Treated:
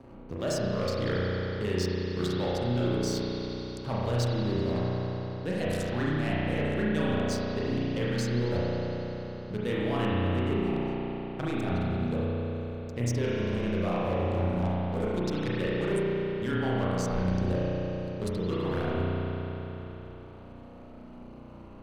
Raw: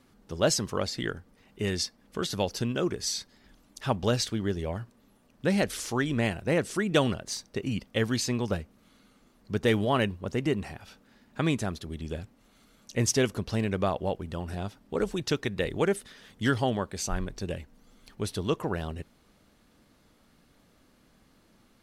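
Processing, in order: local Wiener filter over 25 samples; reverse; compression 12:1, threshold -35 dBFS, peak gain reduction 18 dB; reverse; waveshaping leveller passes 2; spring tank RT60 2.9 s, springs 33 ms, chirp 60 ms, DRR -8 dB; three bands compressed up and down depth 40%; trim -2.5 dB

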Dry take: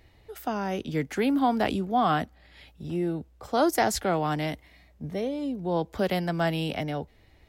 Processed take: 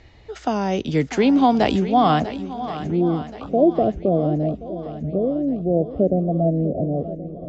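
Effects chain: steep low-pass 7.4 kHz 96 dB/octave, from 2.19 s 1.5 kHz, from 3.47 s 700 Hz; dynamic bell 1.5 kHz, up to -7 dB, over -44 dBFS, Q 1.5; shuffle delay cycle 1076 ms, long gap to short 1.5:1, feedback 41%, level -13 dB; trim +8.5 dB

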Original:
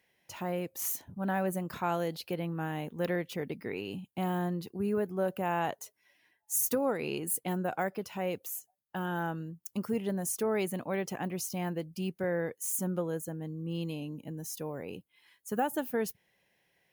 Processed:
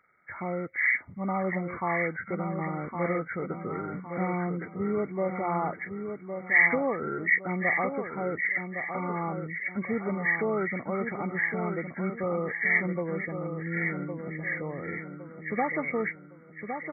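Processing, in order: knee-point frequency compression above 1.1 kHz 4:1; feedback delay 1111 ms, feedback 39%, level -7 dB; trim +1.5 dB

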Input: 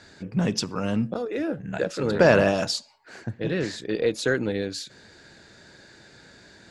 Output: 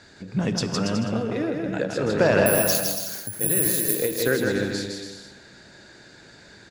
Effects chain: 2.46–3.95 s: careless resampling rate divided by 4×, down none, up zero stuff; peak limiter -8 dBFS, peak gain reduction 11 dB; bouncing-ball echo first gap 160 ms, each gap 0.75×, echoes 5; reverberation RT60 1.5 s, pre-delay 3 ms, DRR 12.5 dB; endings held to a fixed fall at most 110 dB/s

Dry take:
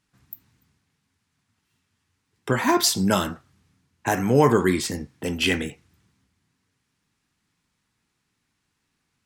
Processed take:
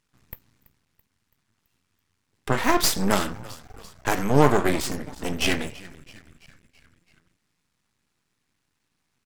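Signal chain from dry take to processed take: frequency-shifting echo 332 ms, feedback 57%, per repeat -84 Hz, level -19.5 dB; half-wave rectifier; trim +3 dB

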